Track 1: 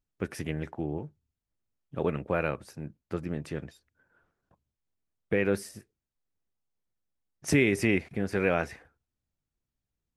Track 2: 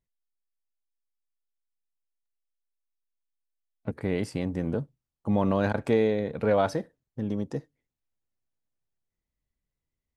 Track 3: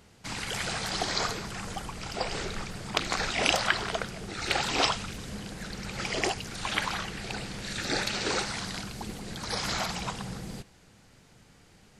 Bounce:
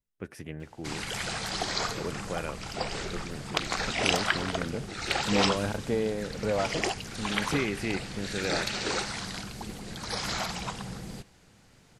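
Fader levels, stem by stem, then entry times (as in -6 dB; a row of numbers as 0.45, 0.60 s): -6.5, -5.5, -1.0 dB; 0.00, 0.00, 0.60 s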